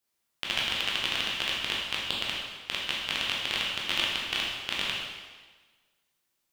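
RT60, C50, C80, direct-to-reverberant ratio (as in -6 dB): 1.4 s, 0.0 dB, 2.5 dB, -4.5 dB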